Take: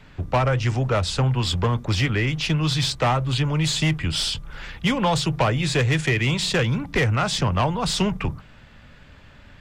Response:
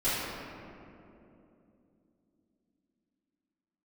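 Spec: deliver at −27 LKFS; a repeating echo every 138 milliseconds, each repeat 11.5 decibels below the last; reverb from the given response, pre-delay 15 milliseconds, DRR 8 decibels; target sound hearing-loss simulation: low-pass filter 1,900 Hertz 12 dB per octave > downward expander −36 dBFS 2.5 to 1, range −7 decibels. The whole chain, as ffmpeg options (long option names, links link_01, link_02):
-filter_complex "[0:a]aecho=1:1:138|276|414:0.266|0.0718|0.0194,asplit=2[link_01][link_02];[1:a]atrim=start_sample=2205,adelay=15[link_03];[link_02][link_03]afir=irnorm=-1:irlink=0,volume=-19.5dB[link_04];[link_01][link_04]amix=inputs=2:normalize=0,lowpass=1900,agate=range=-7dB:threshold=-36dB:ratio=2.5,volume=-4.5dB"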